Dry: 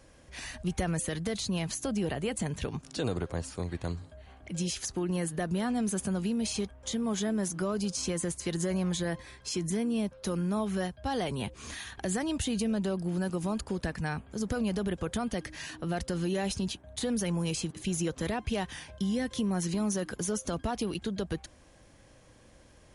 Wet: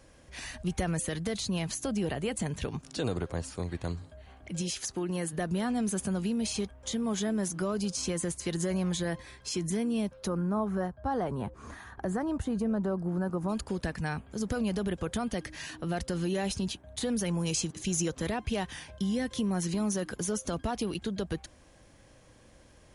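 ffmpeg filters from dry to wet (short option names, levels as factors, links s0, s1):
-filter_complex "[0:a]asettb=1/sr,asplit=3[s0][s1][s2];[s0]atrim=end=4.614[s3];[s1]atrim=start=4.61:end=5.33,asetpts=PTS-STARTPTS,afade=t=in:d=0.004:c=qsin,afade=t=out:st=0.716:d=0.004:c=qsin,lowshelf=f=110:g=-9[s4];[s2]atrim=start=5.326[s5];[s3][s4]acrossfade=d=0.004:c1=hsin:c2=qsin[s6];[s6][s5]acrossfade=d=0.004:c1=qsin:c2=hsin,asplit=3[s7][s8][s9];[s7]afade=t=out:st=10.26:d=0.02[s10];[s8]highshelf=f=1900:t=q:w=1.5:g=-13,afade=t=in:st=10.26:d=0.02,afade=t=out:st=13.48:d=0.02[s11];[s9]afade=t=in:st=13.48:d=0.02[s12];[s10][s11][s12]amix=inputs=3:normalize=0,asettb=1/sr,asplit=3[s13][s14][s15];[s13]atrim=end=17.464[s16];[s14]atrim=start=17.46:end=18.12,asetpts=PTS-STARTPTS,afade=t=in:d=0.004:c=qsin,afade=t=out:st=0.656:d=0.004:c=qsin,equalizer=f=6300:w=1.8:g=7.5[s17];[s15]atrim=start=18.116[s18];[s16][s17]acrossfade=d=0.004:c1=hsin:c2=qsin[s19];[s19][s18]acrossfade=d=0.004:c1=qsin:c2=hsin"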